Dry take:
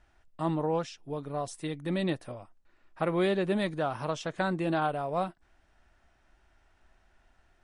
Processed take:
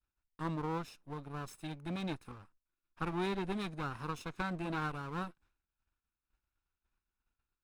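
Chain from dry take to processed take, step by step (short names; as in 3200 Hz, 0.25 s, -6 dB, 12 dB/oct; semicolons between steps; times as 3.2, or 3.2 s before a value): minimum comb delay 0.77 ms; expander -54 dBFS; gain -7.5 dB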